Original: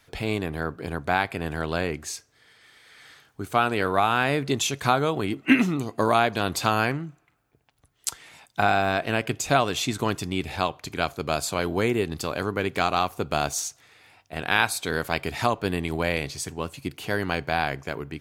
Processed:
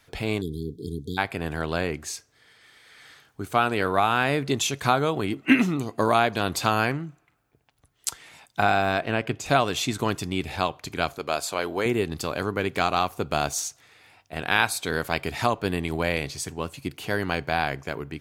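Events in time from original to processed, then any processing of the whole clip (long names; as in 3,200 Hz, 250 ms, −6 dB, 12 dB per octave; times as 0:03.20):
0:00.41–0:01.18: time-frequency box erased 470–3,200 Hz
0:09.01–0:09.46: high-shelf EQ 5,300 Hz −11.5 dB
0:11.18–0:11.86: bass and treble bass −12 dB, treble −2 dB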